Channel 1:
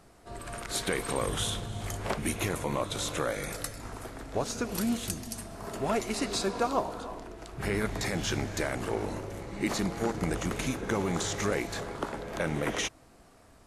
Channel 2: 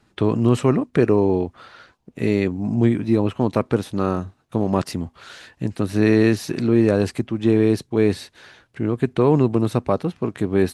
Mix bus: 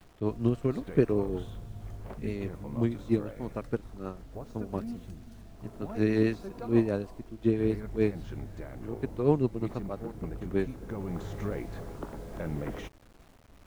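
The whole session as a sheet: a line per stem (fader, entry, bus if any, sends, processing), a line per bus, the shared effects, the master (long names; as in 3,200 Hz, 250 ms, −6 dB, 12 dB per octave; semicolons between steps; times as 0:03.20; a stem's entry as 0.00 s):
−9.0 dB, 0.00 s, no send, low-pass filter 3,200 Hz 6 dB per octave; spectral tilt −3 dB per octave; bit reduction 8 bits; automatic ducking −6 dB, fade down 0.40 s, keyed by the second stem
−4.0 dB, 0.00 s, no send, rotating-speaker cabinet horn 6.3 Hz; expander for the loud parts 2.5 to 1, over −29 dBFS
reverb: not used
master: no processing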